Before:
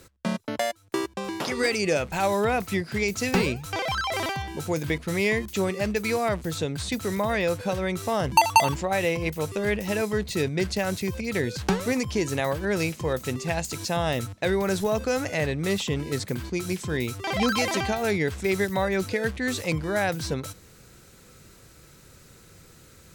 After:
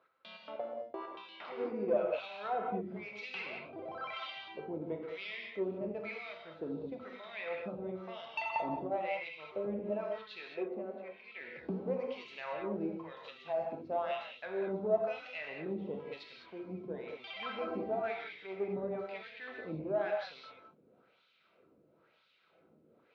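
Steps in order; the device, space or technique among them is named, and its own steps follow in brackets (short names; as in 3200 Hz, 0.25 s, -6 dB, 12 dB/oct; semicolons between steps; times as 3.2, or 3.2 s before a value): wah-wah guitar rig (wah 1 Hz 260–3600 Hz, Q 2.9; tube stage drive 20 dB, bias 0.25; speaker cabinet 93–3800 Hz, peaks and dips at 110 Hz -7 dB, 220 Hz +4 dB, 640 Hz +7 dB, 1800 Hz -7 dB); 10.4–11.41 three-band isolator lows -15 dB, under 270 Hz, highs -15 dB, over 3100 Hz; non-linear reverb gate 0.24 s flat, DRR 0 dB; gain -6.5 dB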